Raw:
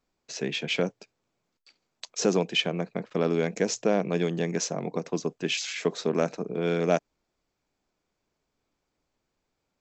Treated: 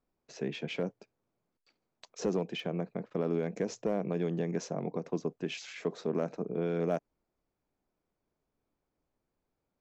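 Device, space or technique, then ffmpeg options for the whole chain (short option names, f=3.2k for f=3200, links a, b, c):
clipper into limiter: -af "lowpass=5.7k,asoftclip=type=hard:threshold=-14dB,alimiter=limit=-18dB:level=0:latency=1:release=74,equalizer=f=3.9k:t=o:w=2.7:g=-10,volume=-2.5dB"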